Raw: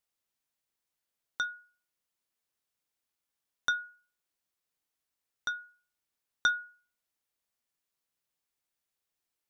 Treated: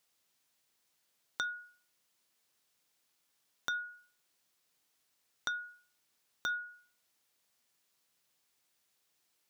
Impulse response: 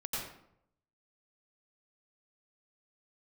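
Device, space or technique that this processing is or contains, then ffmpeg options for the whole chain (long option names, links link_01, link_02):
broadcast voice chain: -af "highpass=92,deesser=0.7,acompressor=threshold=-41dB:ratio=3,equalizer=frequency=4700:width_type=o:width=1.8:gain=3,alimiter=level_in=2.5dB:limit=-24dB:level=0:latency=1:release=79,volume=-2.5dB,volume=8.5dB"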